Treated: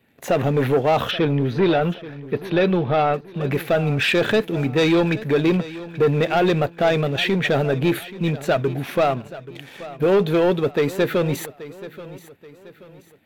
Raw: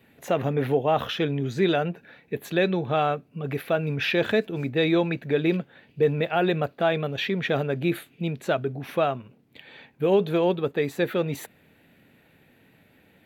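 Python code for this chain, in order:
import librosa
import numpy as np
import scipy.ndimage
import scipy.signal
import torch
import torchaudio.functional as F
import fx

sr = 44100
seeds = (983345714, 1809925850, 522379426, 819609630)

y = fx.leveller(x, sr, passes=2)
y = fx.moving_average(y, sr, points=6, at=(1.11, 3.14))
y = fx.echo_feedback(y, sr, ms=830, feedback_pct=39, wet_db=-16.5)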